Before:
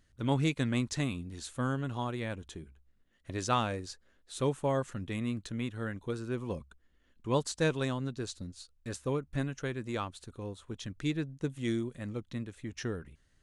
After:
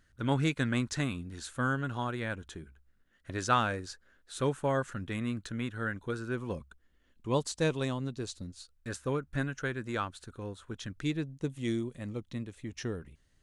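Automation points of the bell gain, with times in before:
bell 1500 Hz 0.5 oct
6.22 s +9 dB
7.32 s -3 dB
8.29 s -3 dB
8.94 s +8.5 dB
10.84 s +8.5 dB
11.26 s -3.5 dB

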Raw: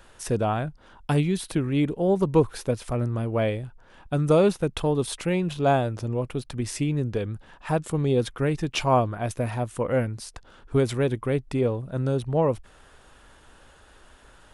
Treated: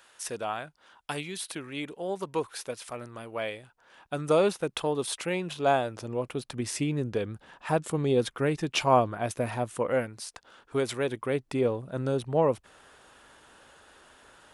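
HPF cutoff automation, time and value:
HPF 6 dB/oct
3.5 s 1400 Hz
4.31 s 540 Hz
5.86 s 540 Hz
6.57 s 230 Hz
9.69 s 230 Hz
10.11 s 590 Hz
11.02 s 590 Hz
11.59 s 260 Hz

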